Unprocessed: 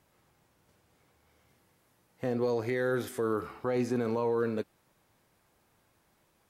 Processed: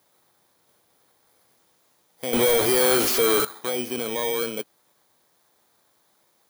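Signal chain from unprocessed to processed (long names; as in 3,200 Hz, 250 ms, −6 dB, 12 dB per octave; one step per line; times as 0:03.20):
samples in bit-reversed order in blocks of 16 samples
high-pass filter 650 Hz 6 dB per octave
0:02.33–0:03.45: power curve on the samples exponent 0.35
level +7 dB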